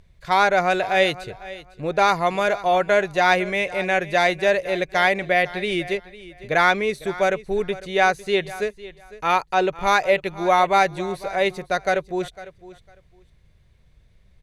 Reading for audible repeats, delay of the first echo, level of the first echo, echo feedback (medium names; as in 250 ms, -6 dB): 2, 503 ms, -17.5 dB, 19%